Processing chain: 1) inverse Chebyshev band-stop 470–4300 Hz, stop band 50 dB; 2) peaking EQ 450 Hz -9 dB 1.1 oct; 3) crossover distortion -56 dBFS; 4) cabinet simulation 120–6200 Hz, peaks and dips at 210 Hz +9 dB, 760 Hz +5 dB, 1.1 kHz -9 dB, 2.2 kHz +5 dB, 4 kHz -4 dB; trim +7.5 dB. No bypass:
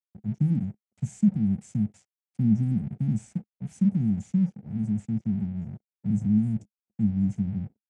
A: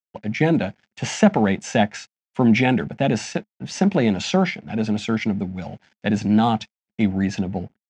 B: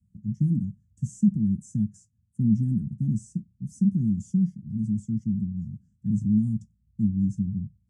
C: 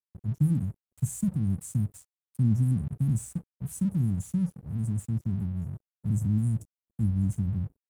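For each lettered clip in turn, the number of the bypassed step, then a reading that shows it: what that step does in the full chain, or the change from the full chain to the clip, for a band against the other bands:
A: 1, crest factor change +5.5 dB; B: 3, distortion -25 dB; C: 4, momentary loudness spread change -2 LU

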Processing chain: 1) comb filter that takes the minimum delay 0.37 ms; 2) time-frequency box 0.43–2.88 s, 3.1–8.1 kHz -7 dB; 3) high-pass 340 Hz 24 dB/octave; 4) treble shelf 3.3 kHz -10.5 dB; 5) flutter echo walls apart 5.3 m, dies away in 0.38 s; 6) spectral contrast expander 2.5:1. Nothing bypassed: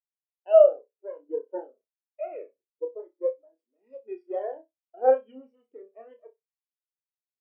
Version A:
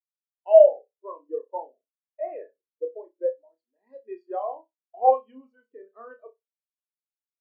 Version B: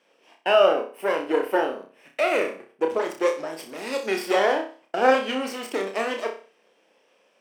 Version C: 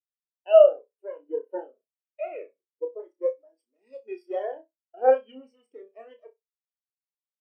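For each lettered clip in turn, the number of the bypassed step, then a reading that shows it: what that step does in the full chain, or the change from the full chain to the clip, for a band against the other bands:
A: 1, momentary loudness spread change +3 LU; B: 6, 2 kHz band +15.5 dB; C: 4, 2 kHz band +5.0 dB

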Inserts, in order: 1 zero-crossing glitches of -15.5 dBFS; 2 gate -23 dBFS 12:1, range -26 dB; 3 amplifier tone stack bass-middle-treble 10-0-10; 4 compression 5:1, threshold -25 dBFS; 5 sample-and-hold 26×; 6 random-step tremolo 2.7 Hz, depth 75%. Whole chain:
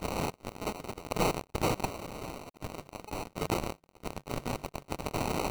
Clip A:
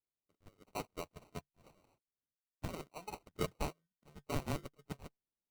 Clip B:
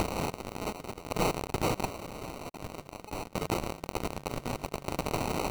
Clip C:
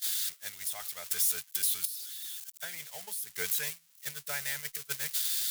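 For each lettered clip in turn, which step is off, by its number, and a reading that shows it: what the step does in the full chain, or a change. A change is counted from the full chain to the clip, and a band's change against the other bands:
1, crest factor change +4.0 dB; 2, momentary loudness spread change -1 LU; 5, crest factor change +2.0 dB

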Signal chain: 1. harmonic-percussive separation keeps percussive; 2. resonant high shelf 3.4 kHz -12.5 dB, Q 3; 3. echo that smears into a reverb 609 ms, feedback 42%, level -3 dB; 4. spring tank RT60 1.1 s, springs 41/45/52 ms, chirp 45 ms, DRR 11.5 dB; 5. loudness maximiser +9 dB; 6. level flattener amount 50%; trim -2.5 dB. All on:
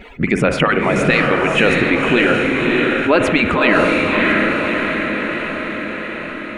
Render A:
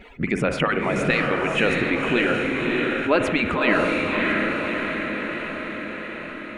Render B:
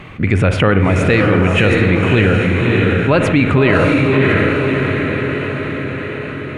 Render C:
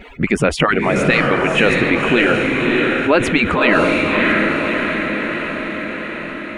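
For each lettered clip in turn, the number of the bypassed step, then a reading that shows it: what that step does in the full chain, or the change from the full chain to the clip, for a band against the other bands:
5, crest factor change +2.0 dB; 1, 125 Hz band +12.5 dB; 4, 8 kHz band +2.0 dB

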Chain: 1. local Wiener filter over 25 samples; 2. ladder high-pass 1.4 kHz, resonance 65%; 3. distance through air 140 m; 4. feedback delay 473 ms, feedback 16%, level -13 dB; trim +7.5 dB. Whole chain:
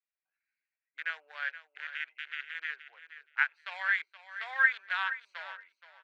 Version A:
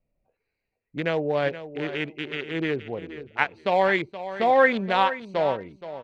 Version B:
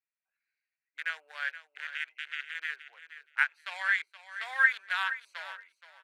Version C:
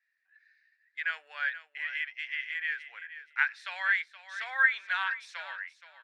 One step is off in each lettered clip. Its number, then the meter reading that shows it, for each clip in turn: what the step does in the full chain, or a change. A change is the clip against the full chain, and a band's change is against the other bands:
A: 2, 500 Hz band +25.5 dB; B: 3, 4 kHz band +2.0 dB; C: 1, crest factor change -1.5 dB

